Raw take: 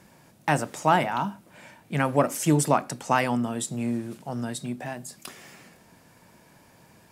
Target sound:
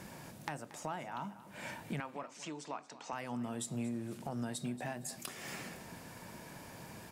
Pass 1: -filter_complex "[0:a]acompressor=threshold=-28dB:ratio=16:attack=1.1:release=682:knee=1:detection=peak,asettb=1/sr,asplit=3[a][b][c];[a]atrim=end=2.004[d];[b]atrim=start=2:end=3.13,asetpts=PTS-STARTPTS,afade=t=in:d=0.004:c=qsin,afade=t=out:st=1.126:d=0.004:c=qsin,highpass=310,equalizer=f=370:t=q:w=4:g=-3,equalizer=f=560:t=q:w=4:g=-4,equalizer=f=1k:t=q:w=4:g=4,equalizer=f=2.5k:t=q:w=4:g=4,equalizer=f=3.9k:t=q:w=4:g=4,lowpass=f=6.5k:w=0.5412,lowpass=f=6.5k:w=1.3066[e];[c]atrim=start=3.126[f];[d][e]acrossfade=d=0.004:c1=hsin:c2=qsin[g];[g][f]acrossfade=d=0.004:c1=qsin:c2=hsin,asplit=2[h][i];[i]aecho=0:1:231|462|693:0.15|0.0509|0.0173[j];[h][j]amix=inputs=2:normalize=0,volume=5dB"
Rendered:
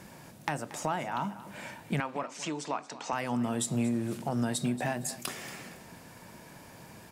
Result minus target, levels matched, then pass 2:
compressor: peak gain reduction -9 dB
-filter_complex "[0:a]acompressor=threshold=-37.5dB:ratio=16:attack=1.1:release=682:knee=1:detection=peak,asettb=1/sr,asplit=3[a][b][c];[a]atrim=end=2.004[d];[b]atrim=start=2:end=3.13,asetpts=PTS-STARTPTS,afade=t=in:d=0.004:c=qsin,afade=t=out:st=1.126:d=0.004:c=qsin,highpass=310,equalizer=f=370:t=q:w=4:g=-3,equalizer=f=560:t=q:w=4:g=-4,equalizer=f=1k:t=q:w=4:g=4,equalizer=f=2.5k:t=q:w=4:g=4,equalizer=f=3.9k:t=q:w=4:g=4,lowpass=f=6.5k:w=0.5412,lowpass=f=6.5k:w=1.3066[e];[c]atrim=start=3.126[f];[d][e]acrossfade=d=0.004:c1=hsin:c2=qsin[g];[g][f]acrossfade=d=0.004:c1=qsin:c2=hsin,asplit=2[h][i];[i]aecho=0:1:231|462|693:0.15|0.0509|0.0173[j];[h][j]amix=inputs=2:normalize=0,volume=5dB"

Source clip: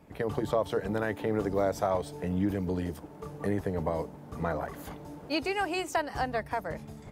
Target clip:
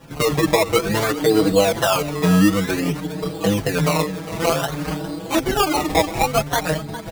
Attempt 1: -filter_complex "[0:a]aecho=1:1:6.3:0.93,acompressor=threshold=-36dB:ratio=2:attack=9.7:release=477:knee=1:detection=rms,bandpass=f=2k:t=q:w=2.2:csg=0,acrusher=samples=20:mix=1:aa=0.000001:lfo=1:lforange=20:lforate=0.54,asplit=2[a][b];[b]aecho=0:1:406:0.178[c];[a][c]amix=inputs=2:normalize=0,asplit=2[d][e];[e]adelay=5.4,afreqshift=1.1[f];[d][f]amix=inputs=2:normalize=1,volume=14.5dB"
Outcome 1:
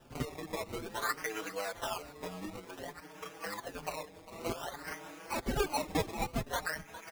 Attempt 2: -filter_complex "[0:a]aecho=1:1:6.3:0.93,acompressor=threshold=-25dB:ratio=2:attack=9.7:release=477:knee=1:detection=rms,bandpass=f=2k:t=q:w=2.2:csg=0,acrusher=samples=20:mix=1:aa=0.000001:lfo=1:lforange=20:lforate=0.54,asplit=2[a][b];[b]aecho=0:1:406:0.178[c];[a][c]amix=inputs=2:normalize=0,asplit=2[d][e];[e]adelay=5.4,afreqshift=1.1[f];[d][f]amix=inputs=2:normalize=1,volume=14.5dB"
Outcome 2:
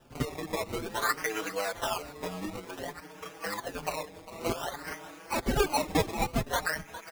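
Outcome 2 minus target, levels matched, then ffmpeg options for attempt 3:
2000 Hz band +4.0 dB
-filter_complex "[0:a]aecho=1:1:6.3:0.93,acompressor=threshold=-25dB:ratio=2:attack=9.7:release=477:knee=1:detection=rms,acrusher=samples=20:mix=1:aa=0.000001:lfo=1:lforange=20:lforate=0.54,asplit=2[a][b];[b]aecho=0:1:406:0.178[c];[a][c]amix=inputs=2:normalize=0,asplit=2[d][e];[e]adelay=5.4,afreqshift=1.1[f];[d][f]amix=inputs=2:normalize=1,volume=14.5dB"

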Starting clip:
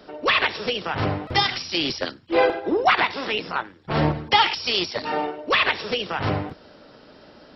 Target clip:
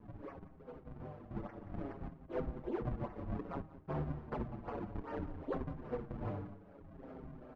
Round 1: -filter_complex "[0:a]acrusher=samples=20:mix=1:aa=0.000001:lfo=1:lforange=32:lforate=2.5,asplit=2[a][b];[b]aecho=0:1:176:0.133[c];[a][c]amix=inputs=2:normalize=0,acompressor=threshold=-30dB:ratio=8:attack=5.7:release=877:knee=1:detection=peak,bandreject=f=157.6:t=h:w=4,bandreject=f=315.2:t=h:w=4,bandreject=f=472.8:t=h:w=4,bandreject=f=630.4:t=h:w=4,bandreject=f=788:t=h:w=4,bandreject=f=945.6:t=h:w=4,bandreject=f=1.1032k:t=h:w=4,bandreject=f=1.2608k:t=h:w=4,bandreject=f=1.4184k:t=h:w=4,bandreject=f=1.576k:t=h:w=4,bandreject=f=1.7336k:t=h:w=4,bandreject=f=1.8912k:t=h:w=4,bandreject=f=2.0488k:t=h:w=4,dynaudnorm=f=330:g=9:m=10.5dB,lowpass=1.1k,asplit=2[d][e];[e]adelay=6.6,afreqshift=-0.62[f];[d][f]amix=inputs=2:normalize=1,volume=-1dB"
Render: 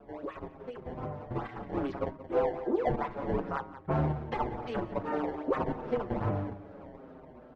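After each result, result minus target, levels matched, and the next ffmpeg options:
compressor: peak gain reduction -9.5 dB; decimation with a swept rate: distortion -8 dB
-filter_complex "[0:a]acrusher=samples=20:mix=1:aa=0.000001:lfo=1:lforange=32:lforate=2.5,asplit=2[a][b];[b]aecho=0:1:176:0.133[c];[a][c]amix=inputs=2:normalize=0,acompressor=threshold=-41dB:ratio=8:attack=5.7:release=877:knee=1:detection=peak,bandreject=f=157.6:t=h:w=4,bandreject=f=315.2:t=h:w=4,bandreject=f=472.8:t=h:w=4,bandreject=f=630.4:t=h:w=4,bandreject=f=788:t=h:w=4,bandreject=f=945.6:t=h:w=4,bandreject=f=1.1032k:t=h:w=4,bandreject=f=1.2608k:t=h:w=4,bandreject=f=1.4184k:t=h:w=4,bandreject=f=1.576k:t=h:w=4,bandreject=f=1.7336k:t=h:w=4,bandreject=f=1.8912k:t=h:w=4,bandreject=f=2.0488k:t=h:w=4,dynaudnorm=f=330:g=9:m=10.5dB,lowpass=1.1k,asplit=2[d][e];[e]adelay=6.6,afreqshift=-0.62[f];[d][f]amix=inputs=2:normalize=1,volume=-1dB"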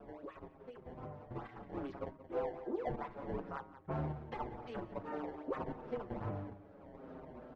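decimation with a swept rate: distortion -8 dB
-filter_complex "[0:a]acrusher=samples=57:mix=1:aa=0.000001:lfo=1:lforange=91.2:lforate=2.5,asplit=2[a][b];[b]aecho=0:1:176:0.133[c];[a][c]amix=inputs=2:normalize=0,acompressor=threshold=-41dB:ratio=8:attack=5.7:release=877:knee=1:detection=peak,bandreject=f=157.6:t=h:w=4,bandreject=f=315.2:t=h:w=4,bandreject=f=472.8:t=h:w=4,bandreject=f=630.4:t=h:w=4,bandreject=f=788:t=h:w=4,bandreject=f=945.6:t=h:w=4,bandreject=f=1.1032k:t=h:w=4,bandreject=f=1.2608k:t=h:w=4,bandreject=f=1.4184k:t=h:w=4,bandreject=f=1.576k:t=h:w=4,bandreject=f=1.7336k:t=h:w=4,bandreject=f=1.8912k:t=h:w=4,bandreject=f=2.0488k:t=h:w=4,dynaudnorm=f=330:g=9:m=10.5dB,lowpass=1.1k,asplit=2[d][e];[e]adelay=6.6,afreqshift=-0.62[f];[d][f]amix=inputs=2:normalize=1,volume=-1dB"

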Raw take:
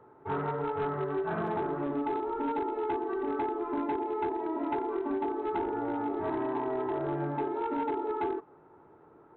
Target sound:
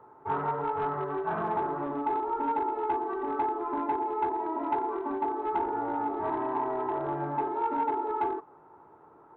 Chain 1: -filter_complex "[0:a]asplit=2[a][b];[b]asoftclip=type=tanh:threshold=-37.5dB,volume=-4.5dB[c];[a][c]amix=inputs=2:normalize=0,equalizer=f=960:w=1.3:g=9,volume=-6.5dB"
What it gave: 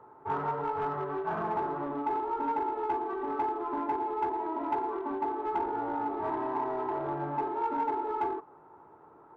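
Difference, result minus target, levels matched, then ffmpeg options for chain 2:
soft clip: distortion +13 dB
-filter_complex "[0:a]asplit=2[a][b];[b]asoftclip=type=tanh:threshold=-26dB,volume=-4.5dB[c];[a][c]amix=inputs=2:normalize=0,equalizer=f=960:w=1.3:g=9,volume=-6.5dB"

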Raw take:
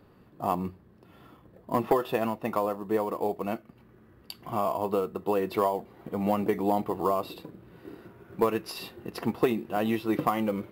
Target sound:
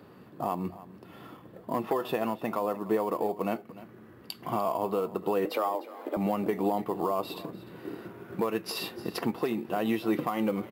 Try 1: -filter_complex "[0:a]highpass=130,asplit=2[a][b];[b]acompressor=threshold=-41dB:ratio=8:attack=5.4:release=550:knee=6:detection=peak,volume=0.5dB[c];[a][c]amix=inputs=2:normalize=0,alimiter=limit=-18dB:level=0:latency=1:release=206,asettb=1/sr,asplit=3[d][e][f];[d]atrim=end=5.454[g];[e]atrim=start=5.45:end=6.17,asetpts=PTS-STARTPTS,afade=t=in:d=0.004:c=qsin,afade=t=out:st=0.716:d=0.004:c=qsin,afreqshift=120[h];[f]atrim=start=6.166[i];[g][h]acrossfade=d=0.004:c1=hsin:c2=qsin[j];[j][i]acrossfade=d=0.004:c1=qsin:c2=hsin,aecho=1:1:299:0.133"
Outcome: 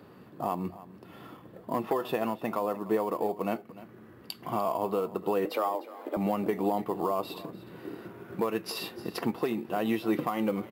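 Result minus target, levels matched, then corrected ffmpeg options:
compressor: peak gain reduction +5.5 dB
-filter_complex "[0:a]highpass=130,asplit=2[a][b];[b]acompressor=threshold=-34.5dB:ratio=8:attack=5.4:release=550:knee=6:detection=peak,volume=0.5dB[c];[a][c]amix=inputs=2:normalize=0,alimiter=limit=-18dB:level=0:latency=1:release=206,asettb=1/sr,asplit=3[d][e][f];[d]atrim=end=5.454[g];[e]atrim=start=5.45:end=6.17,asetpts=PTS-STARTPTS,afade=t=in:d=0.004:c=qsin,afade=t=out:st=0.716:d=0.004:c=qsin,afreqshift=120[h];[f]atrim=start=6.166[i];[g][h]acrossfade=d=0.004:c1=hsin:c2=qsin[j];[j][i]acrossfade=d=0.004:c1=qsin:c2=hsin,aecho=1:1:299:0.133"

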